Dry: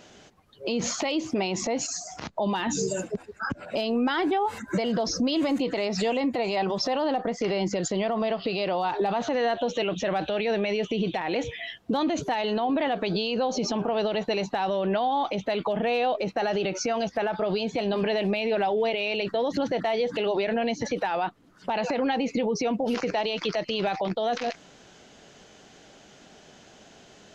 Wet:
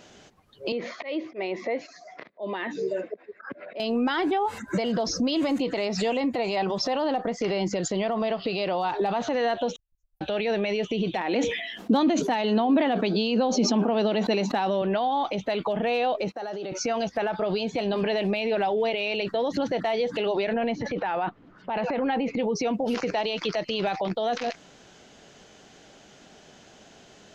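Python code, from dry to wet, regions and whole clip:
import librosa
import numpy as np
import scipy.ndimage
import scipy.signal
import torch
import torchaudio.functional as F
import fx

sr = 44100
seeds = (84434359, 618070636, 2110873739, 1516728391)

y = fx.chain(x, sr, fx.auto_swell(attack_ms=113.0),
    fx.cabinet(low_hz=350.0, low_slope=12, high_hz=3300.0, hz=(380.0, 570.0, 850.0, 1400.0, 2000.0, 2900.0), db=(4, 4, -9, -6, 7, -8)), at=(0.72, 3.8))
y = fx.chain(y, sr, fx.cheby2_bandstop(low_hz=160.0, high_hz=4100.0, order=4, stop_db=70),
    fx.level_steps(step_db=16), at=(9.76, 10.21))
y = fx.chain(y, sr, fx.low_shelf_res(hz=160.0, db=-10.5, q=3.0),
    fx.sustainer(db_per_s=54.0), at=(11.16, 14.82))
y = fx.chain(y, sr, fx.highpass(hz=240.0, slope=12),
    fx.peak_eq(hz=2500.0, db=-8.5, octaves=0.84),
    fx.level_steps(step_db=11), at=(16.32, 16.72))
y = fx.chain(y, sr, fx.lowpass(hz=2600.0, slope=12),
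    fx.transient(attack_db=-4, sustain_db=6), at=(20.53, 22.39))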